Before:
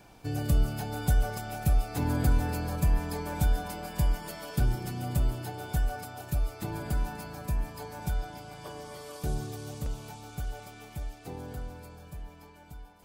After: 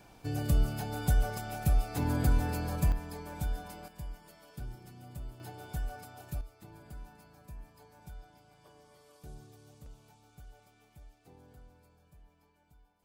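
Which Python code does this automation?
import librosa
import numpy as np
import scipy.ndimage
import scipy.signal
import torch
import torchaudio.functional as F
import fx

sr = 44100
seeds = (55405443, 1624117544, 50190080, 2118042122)

y = fx.gain(x, sr, db=fx.steps((0.0, -2.0), (2.92, -8.5), (3.88, -16.0), (5.4, -8.0), (6.41, -17.0)))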